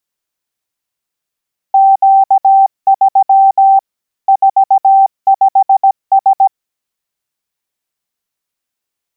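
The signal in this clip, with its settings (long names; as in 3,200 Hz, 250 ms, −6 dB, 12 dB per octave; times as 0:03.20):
Morse code "Q3 45S" 17 words per minute 779 Hz −3.5 dBFS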